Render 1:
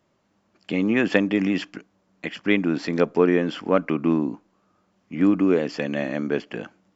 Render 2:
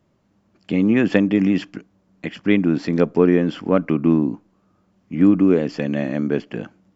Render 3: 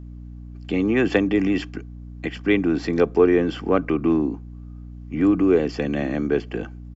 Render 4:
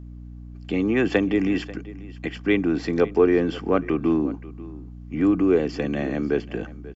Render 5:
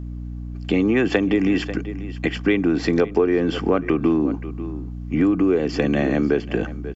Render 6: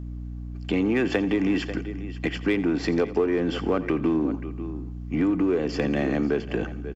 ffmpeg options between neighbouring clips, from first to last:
-af "lowshelf=f=300:g=11.5,volume=0.841"
-filter_complex "[0:a]aecho=1:1:2.6:0.38,acrossover=split=110|320|2600[s0][s1][s2][s3];[s1]alimiter=limit=0.0891:level=0:latency=1[s4];[s0][s4][s2][s3]amix=inputs=4:normalize=0,aeval=exprs='val(0)+0.0158*(sin(2*PI*60*n/s)+sin(2*PI*2*60*n/s)/2+sin(2*PI*3*60*n/s)/3+sin(2*PI*4*60*n/s)/4+sin(2*PI*5*60*n/s)/5)':c=same"
-af "aecho=1:1:539:0.119,volume=0.841"
-af "acompressor=threshold=0.0708:ratio=5,volume=2.51"
-filter_complex "[0:a]asplit=2[s0][s1];[s1]asoftclip=type=hard:threshold=0.1,volume=0.422[s2];[s0][s2]amix=inputs=2:normalize=0,aecho=1:1:86|172|258|344:0.141|0.0692|0.0339|0.0166,volume=0.473"

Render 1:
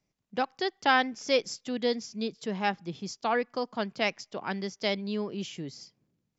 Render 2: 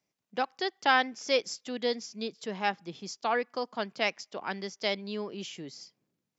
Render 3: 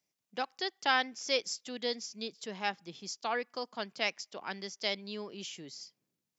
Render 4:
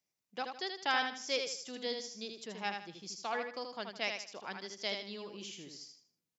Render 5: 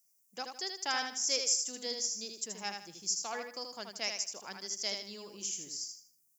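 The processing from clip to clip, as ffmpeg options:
-af "highpass=f=340:p=1"
-af "highshelf=f=2900:g=8.5,volume=0.501"
-af "aecho=1:1:79|158|237|316:0.531|0.17|0.0544|0.0174,volume=0.631"
-af "aexciter=amount=8.2:drive=7.5:freq=5500,volume=0.708"

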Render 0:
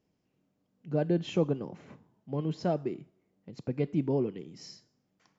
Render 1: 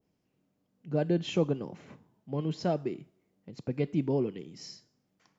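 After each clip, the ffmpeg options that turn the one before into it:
-af "adynamicequalizer=threshold=0.00316:dfrequency=1900:dqfactor=0.7:tfrequency=1900:tqfactor=0.7:attack=5:release=100:ratio=0.375:range=2:mode=boostabove:tftype=highshelf"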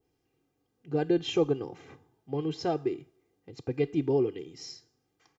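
-af "aecho=1:1:2.5:0.79"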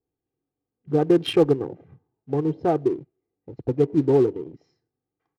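-af "afwtdn=0.00891,acrusher=bits=6:mode=log:mix=0:aa=0.000001,adynamicsmooth=sensitivity=6:basefreq=1700,volume=2.51"

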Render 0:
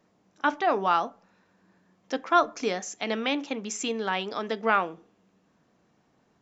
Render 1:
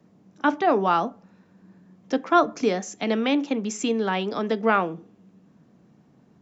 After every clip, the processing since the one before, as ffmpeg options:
-filter_complex "[0:a]equalizer=f=170:t=o:w=2.5:g=14,acrossover=split=250|870|1300[s0][s1][s2][s3];[s0]acompressor=threshold=0.0178:ratio=6[s4];[s4][s1][s2][s3]amix=inputs=4:normalize=0"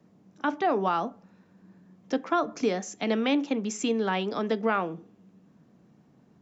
-af "alimiter=limit=0.224:level=0:latency=1:release=184,volume=0.75"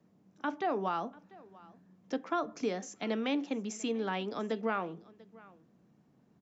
-af "aecho=1:1:692:0.075,volume=0.447"

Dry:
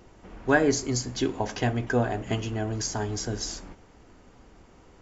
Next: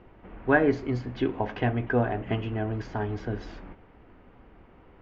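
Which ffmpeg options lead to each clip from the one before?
-af "lowpass=f=2800:w=0.5412,lowpass=f=2800:w=1.3066"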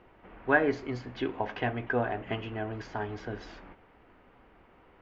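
-af "lowshelf=f=380:g=-9.5"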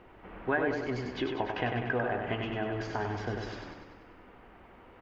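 -filter_complex "[0:a]acompressor=threshold=0.0224:ratio=2.5,asplit=2[s0][s1];[s1]aecho=0:1:97|194|291|388|485|582|679|776:0.562|0.321|0.183|0.104|0.0594|0.0338|0.0193|0.011[s2];[s0][s2]amix=inputs=2:normalize=0,volume=1.41"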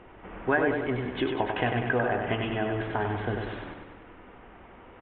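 -af "aresample=8000,aresample=44100,volume=1.68"

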